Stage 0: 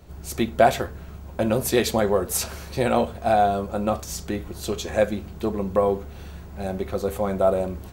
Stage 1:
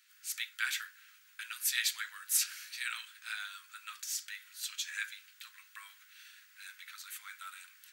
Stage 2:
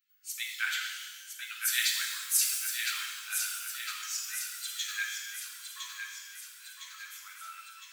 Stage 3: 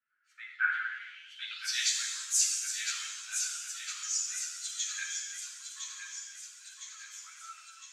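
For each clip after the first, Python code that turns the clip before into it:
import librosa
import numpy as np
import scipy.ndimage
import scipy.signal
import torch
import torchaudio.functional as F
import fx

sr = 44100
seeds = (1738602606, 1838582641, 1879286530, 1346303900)

y1 = scipy.signal.sosfilt(scipy.signal.butter(8, 1500.0, 'highpass', fs=sr, output='sos'), x)
y1 = F.gain(torch.from_numpy(y1), -3.5).numpy()
y2 = fx.bin_expand(y1, sr, power=1.5)
y2 = fx.echo_thinned(y2, sr, ms=1009, feedback_pct=56, hz=660.0, wet_db=-6.5)
y2 = fx.rev_shimmer(y2, sr, seeds[0], rt60_s=1.4, semitones=12, shimmer_db=-8, drr_db=0.0)
y2 = F.gain(torch.from_numpy(y2), 3.0).numpy()
y3 = fx.filter_sweep_lowpass(y2, sr, from_hz=1500.0, to_hz=6800.0, start_s=0.85, end_s=1.9, q=4.0)
y3 = fx.ensemble(y3, sr)
y3 = F.gain(torch.from_numpy(y3), -2.5).numpy()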